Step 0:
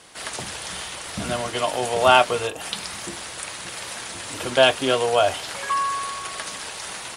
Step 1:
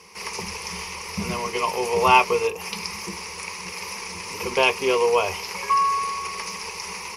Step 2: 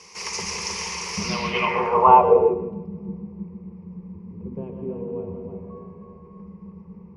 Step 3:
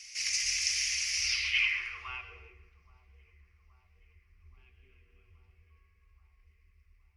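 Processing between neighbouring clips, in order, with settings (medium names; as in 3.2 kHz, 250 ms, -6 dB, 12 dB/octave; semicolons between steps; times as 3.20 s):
rippled EQ curve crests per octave 0.82, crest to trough 17 dB; trim -2.5 dB
tape echo 316 ms, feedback 47%, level -3.5 dB, low-pass 2.4 kHz; on a send at -4 dB: reverberation RT60 0.70 s, pre-delay 114 ms; on the sum: low-pass sweep 6.9 kHz -> 200 Hz, 1.18–2.79 s; trim -1.5 dB
inverse Chebyshev band-stop 110–1000 Hz, stop band 40 dB; feedback echo behind a band-pass 825 ms, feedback 68%, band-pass 440 Hz, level -17 dB; Opus 48 kbps 48 kHz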